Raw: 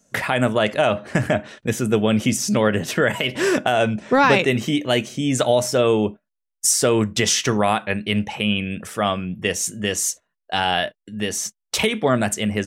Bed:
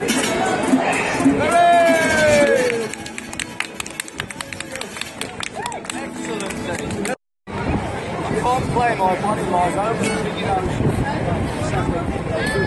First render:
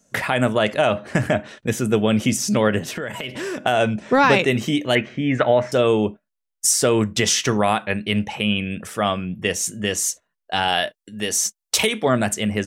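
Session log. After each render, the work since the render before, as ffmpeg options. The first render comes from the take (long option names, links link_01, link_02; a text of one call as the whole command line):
ffmpeg -i in.wav -filter_complex "[0:a]asettb=1/sr,asplit=3[link_01][link_02][link_03];[link_01]atrim=end=2.794[link_04];[link_02]atrim=start=2.79:end=3.66,asetpts=PTS-STARTPTS,afade=type=in:duration=0.004:curve=qsin,afade=type=out:start_time=0.866:duration=0.004:curve=qsin,acompressor=threshold=-27dB:ratio=3:attack=3.2:release=140:knee=1:detection=peak[link_05];[link_03]atrim=start=3.656[link_06];[link_04][link_05]acrossfade=duration=0.004:curve1=hsin:curve2=qsin[link_07];[link_07][link_06]acrossfade=duration=0.004:curve1=qsin:curve2=hsin,asettb=1/sr,asplit=3[link_08][link_09][link_10];[link_08]atrim=end=4.954[link_11];[link_09]atrim=start=4.95:end=5.72,asetpts=PTS-STARTPTS,afade=type=in:duration=0.004:curve=qsin,afade=type=out:start_time=0.766:duration=0.004:curve=qsin,lowpass=frequency=1900:width_type=q:width=3.2[link_12];[link_10]atrim=start=5.716[link_13];[link_11][link_12]acrossfade=duration=0.004:curve1=hsin:curve2=qsin[link_14];[link_14][link_13]acrossfade=duration=0.004:curve1=qsin:curve2=hsin,asettb=1/sr,asplit=3[link_15][link_16][link_17];[link_15]atrim=end=10.684[link_18];[link_16]atrim=start=10.68:end=12.07,asetpts=PTS-STARTPTS,afade=type=in:duration=0.004:curve=qsin,afade=type=out:start_time=1.386:duration=0.004:curve=qsin,bass=frequency=250:gain=-5,treble=frequency=4000:gain=6[link_19];[link_17]atrim=start=12.066[link_20];[link_18][link_19]acrossfade=duration=0.004:curve1=hsin:curve2=qsin[link_21];[link_21][link_20]acrossfade=duration=0.004:curve1=qsin:curve2=hsin" out.wav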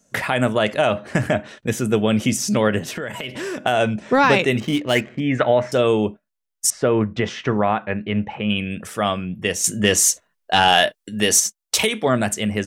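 ffmpeg -i in.wav -filter_complex "[0:a]asettb=1/sr,asplit=3[link_01][link_02][link_03];[link_01]atrim=end=4.604[link_04];[link_02]atrim=start=4.6:end=5.2,asetpts=PTS-STARTPTS,afade=type=in:duration=0.004:curve=qsin,afade=type=out:start_time=0.596:duration=0.004:curve=qsin,adynamicsmooth=sensitivity=5.5:basefreq=1300[link_05];[link_03]atrim=start=5.196[link_06];[link_04][link_05]acrossfade=duration=0.004:curve1=hsin:curve2=qsin[link_07];[link_07][link_06]acrossfade=duration=0.004:curve1=qsin:curve2=hsin,asettb=1/sr,asplit=3[link_08][link_09][link_10];[link_08]atrim=end=6.704[link_11];[link_09]atrim=start=6.7:end=8.5,asetpts=PTS-STARTPTS,afade=type=in:duration=0.004:curve=qsin,afade=type=out:start_time=1.796:duration=0.004:curve=qsin,lowpass=1900[link_12];[link_10]atrim=start=8.496[link_13];[link_11][link_12]acrossfade=duration=0.004:curve1=hsin:curve2=qsin[link_14];[link_14][link_13]acrossfade=duration=0.004:curve1=qsin:curve2=hsin,asettb=1/sr,asplit=3[link_15][link_16][link_17];[link_15]atrim=end=9.644[link_18];[link_16]atrim=start=9.64:end=11.4,asetpts=PTS-STARTPTS,afade=type=in:duration=0.004:curve=qsin,afade=type=out:start_time=1.756:duration=0.004:curve=qsin,acontrast=77[link_19];[link_17]atrim=start=11.396[link_20];[link_18][link_19]acrossfade=duration=0.004:curve1=hsin:curve2=qsin[link_21];[link_21][link_20]acrossfade=duration=0.004:curve1=qsin:curve2=hsin" out.wav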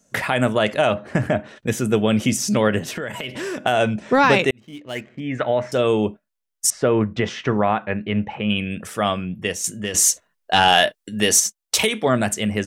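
ffmpeg -i in.wav -filter_complex "[0:a]asettb=1/sr,asplit=3[link_01][link_02][link_03];[link_01]atrim=end=0.944[link_04];[link_02]atrim=start=0.94:end=1.56,asetpts=PTS-STARTPTS,afade=type=in:duration=0.004:curve=qsin,afade=type=out:start_time=0.616:duration=0.004:curve=qsin,highshelf=frequency=2400:gain=-8[link_05];[link_03]atrim=start=1.556[link_06];[link_04][link_05]acrossfade=duration=0.004:curve1=hsin:curve2=qsin[link_07];[link_07][link_06]acrossfade=duration=0.004:curve1=qsin:curve2=hsin,asplit=3[link_08][link_09][link_10];[link_08]atrim=end=4.51,asetpts=PTS-STARTPTS,afade=type=out:start_time=4.506:duration=0.004:curve=hsin[link_11];[link_09]atrim=start=4.51:end=9.94,asetpts=PTS-STARTPTS,afade=type=in:duration=1.56,afade=type=out:start_time=4.77:duration=0.66:silence=0.237137[link_12];[link_10]atrim=start=9.94,asetpts=PTS-STARTPTS,afade=type=in:duration=0.004:curve=hsin:silence=0.237137[link_13];[link_11][link_12][link_13]concat=n=3:v=0:a=1" out.wav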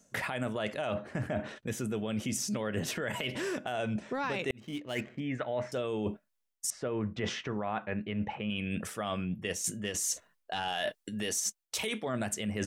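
ffmpeg -i in.wav -af "alimiter=limit=-12.5dB:level=0:latency=1:release=96,areverse,acompressor=threshold=-31dB:ratio=6,areverse" out.wav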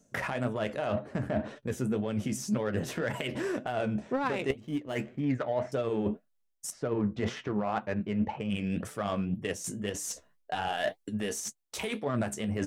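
ffmpeg -i in.wav -filter_complex "[0:a]flanger=delay=6.7:depth=8.6:regen=44:speed=1.9:shape=sinusoidal,asplit=2[link_01][link_02];[link_02]adynamicsmooth=sensitivity=6.5:basefreq=890,volume=2.5dB[link_03];[link_01][link_03]amix=inputs=2:normalize=0" out.wav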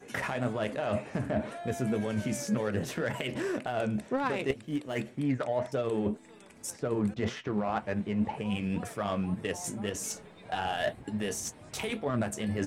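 ffmpeg -i in.wav -i bed.wav -filter_complex "[1:a]volume=-28.5dB[link_01];[0:a][link_01]amix=inputs=2:normalize=0" out.wav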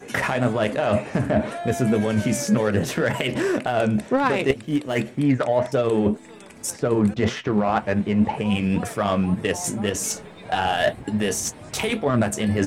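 ffmpeg -i in.wav -af "volume=10dB" out.wav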